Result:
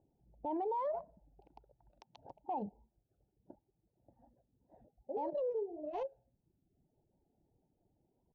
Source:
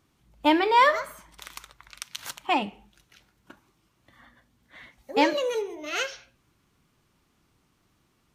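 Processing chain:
adaptive Wiener filter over 41 samples
Butterworth low-pass 5,500 Hz
reverb reduction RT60 0.87 s
drawn EQ curve 240 Hz 0 dB, 890 Hz +12 dB, 1,300 Hz −20 dB
brickwall limiter −25.5 dBFS, peak gain reduction 22.5 dB
wow of a warped record 33 1/3 rpm, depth 160 cents
level −5.5 dB

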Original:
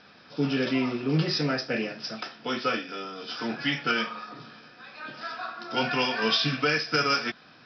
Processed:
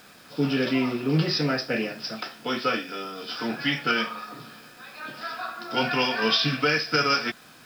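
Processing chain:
bit reduction 9 bits
level +2 dB

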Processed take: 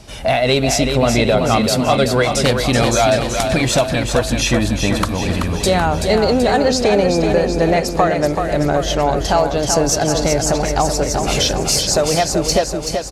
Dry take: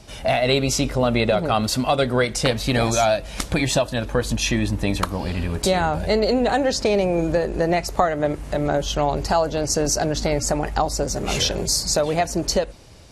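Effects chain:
soft clipping −7.5 dBFS, distortion −26 dB
on a send: repeating echo 381 ms, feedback 59%, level −6 dB
on the sum: level +4.5 dB

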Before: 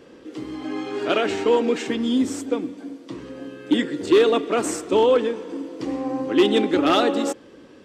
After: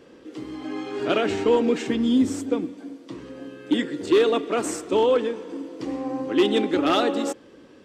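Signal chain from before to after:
0:00.99–0:02.65: low-shelf EQ 190 Hz +10.5 dB
level −2.5 dB

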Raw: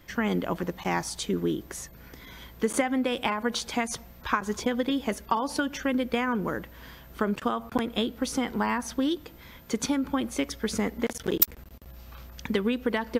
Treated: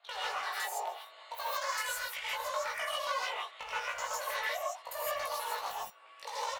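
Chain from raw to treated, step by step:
adaptive Wiener filter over 15 samples
low-pass that shuts in the quiet parts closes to 2,600 Hz, open at −24 dBFS
high-pass filter 330 Hz 24 dB per octave
downward compressor 6 to 1, threshold −31 dBFS, peak gain reduction 14.5 dB
tuned comb filter 710 Hz, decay 0.3 s, mix 70%
frequency shifter +23 Hz
hard clipping −36 dBFS, distortion −19 dB
double-tracking delay 37 ms −2.5 dB
reverb whose tail is shaped and stops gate 350 ms rising, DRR −7 dB
wrong playback speed 7.5 ips tape played at 15 ips
level +2 dB

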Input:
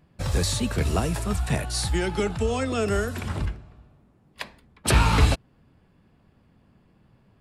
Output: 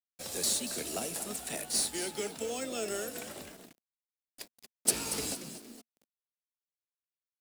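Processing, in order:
echo with shifted repeats 232 ms, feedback 30%, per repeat +86 Hz, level −11 dB
gain on a spectral selection 0:04.08–0:05.93, 510–4,400 Hz −7 dB
first difference
log-companded quantiser 4 bits
drawn EQ curve 130 Hz 0 dB, 230 Hz +11 dB, 690 Hz +6 dB, 1,000 Hz −5 dB
level +5 dB

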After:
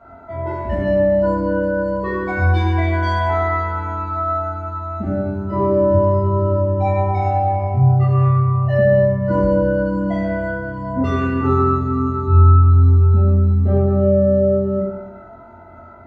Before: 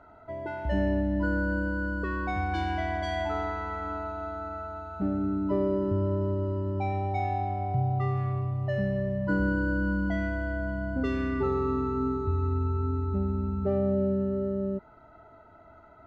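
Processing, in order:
flutter between parallel walls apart 3.8 metres, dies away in 0.27 s
convolution reverb RT60 1.0 s, pre-delay 4 ms, DRR −9 dB

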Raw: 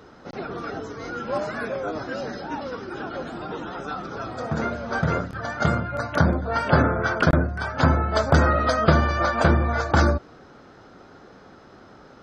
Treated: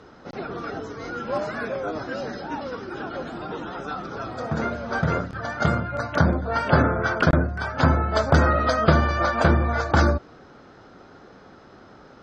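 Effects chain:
low-pass filter 7,500 Hz 12 dB per octave

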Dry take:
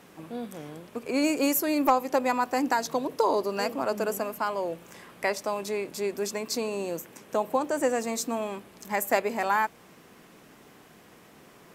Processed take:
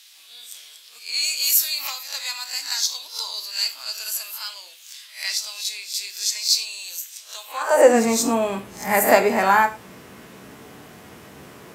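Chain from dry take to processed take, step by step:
peak hold with a rise ahead of every peak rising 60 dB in 0.36 s
reverb whose tail is shaped and stops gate 130 ms falling, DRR 6 dB
high-pass filter sweep 3,900 Hz → 75 Hz, 0:07.44–0:08.17
level +7 dB

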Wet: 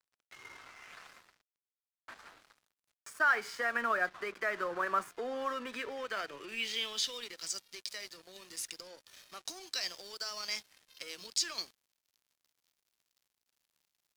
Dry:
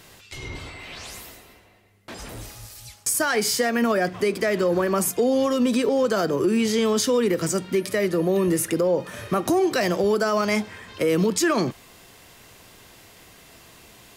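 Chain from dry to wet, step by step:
band-pass filter sweep 1,400 Hz → 4,700 Hz, 0:05.40–0:07.53
dead-zone distortion −51 dBFS

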